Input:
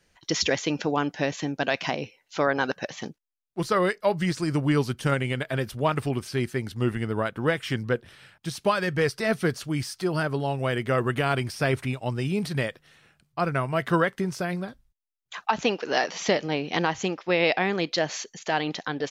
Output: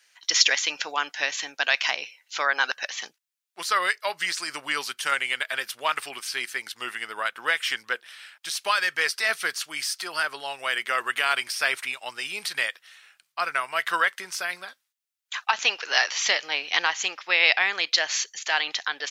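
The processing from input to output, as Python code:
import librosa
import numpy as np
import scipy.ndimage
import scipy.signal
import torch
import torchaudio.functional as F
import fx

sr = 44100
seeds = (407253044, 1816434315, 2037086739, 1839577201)

y = scipy.signal.sosfilt(scipy.signal.butter(2, 1500.0, 'highpass', fs=sr, output='sos'), x)
y = F.gain(torch.from_numpy(y), 8.0).numpy()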